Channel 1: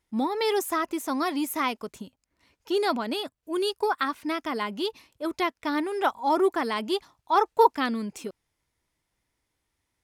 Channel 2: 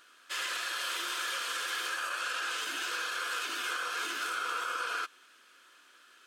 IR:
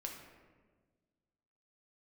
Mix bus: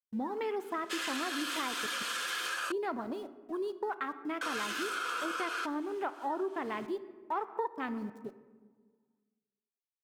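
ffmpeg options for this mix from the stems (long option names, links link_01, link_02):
-filter_complex "[0:a]aeval=exprs='val(0)*gte(abs(val(0)),0.0188)':channel_layout=same,afwtdn=0.0251,volume=-9dB,asplit=2[link_01][link_02];[link_02]volume=-5.5dB[link_03];[1:a]adelay=600,volume=0.5dB,asplit=3[link_04][link_05][link_06];[link_04]atrim=end=2.72,asetpts=PTS-STARTPTS,afade=type=out:start_time=2.716:duration=0.004:curve=hsin[link_07];[link_05]atrim=start=2.72:end=4.41,asetpts=PTS-STARTPTS,volume=0[link_08];[link_06]atrim=start=4.41,asetpts=PTS-STARTPTS,afade=type=in:duration=0.004:curve=hsin[link_09];[link_07][link_08][link_09]concat=n=3:v=0:a=1[link_10];[2:a]atrim=start_sample=2205[link_11];[link_03][link_11]afir=irnorm=-1:irlink=0[link_12];[link_01][link_10][link_12]amix=inputs=3:normalize=0,acompressor=threshold=-31dB:ratio=6"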